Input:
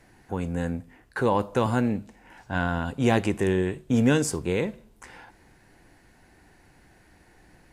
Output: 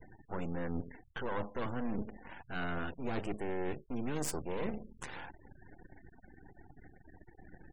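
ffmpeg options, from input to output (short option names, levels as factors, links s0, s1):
-af "bandreject=f=212.7:t=h:w=4,bandreject=f=425.4:t=h:w=4,aeval=exprs='max(val(0),0)':c=same,areverse,acompressor=threshold=0.0141:ratio=10,areverse,afftfilt=real='re*gte(hypot(re,im),0.002)':imag='im*gte(hypot(re,im),0.002)':win_size=1024:overlap=0.75,volume=1.88"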